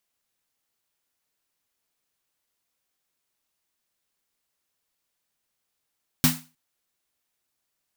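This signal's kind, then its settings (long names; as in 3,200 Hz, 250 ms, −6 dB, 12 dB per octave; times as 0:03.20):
synth snare length 0.31 s, tones 160 Hz, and 250 Hz, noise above 710 Hz, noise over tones 0 dB, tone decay 0.30 s, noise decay 0.31 s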